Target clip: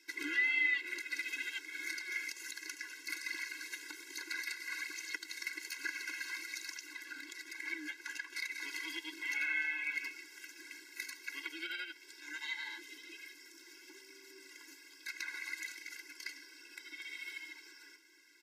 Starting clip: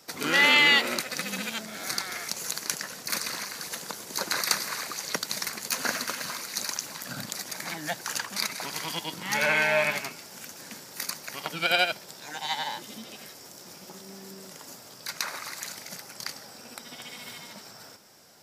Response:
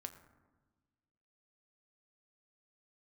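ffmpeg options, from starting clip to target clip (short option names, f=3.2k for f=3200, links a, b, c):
-filter_complex "[0:a]acompressor=threshold=-30dB:ratio=8,asettb=1/sr,asplit=3[a][b][c];[a]atrim=end=6.934[d];[b]atrim=start=6.93:end=8.35,asetpts=PTS-STARTPTS,afade=t=in:d=0.004:c=qsin,afade=t=out:st=1.416:d=0.004:c=qsin,highshelf=f=4.6k:g=-6[e];[c]atrim=start=8.346[f];[d][e]acrossfade=d=0.004:c1=hsin:c2=qsin[g];[g][f]acrossfade=d=0.004:c1=qsin:c2=hsin,flanger=delay=0.2:depth=5.2:regen=59:speed=1.2:shape=triangular,firequalizer=gain_entry='entry(330,0);entry(500,-25);entry(1900,9);entry(3300,-3);entry(12000,-9)':delay=0.05:min_phase=1,afftfilt=real='re*eq(mod(floor(b*sr/1024/280),2),1)':imag='im*eq(mod(floor(b*sr/1024/280),2),1)':win_size=1024:overlap=0.75,volume=1dB"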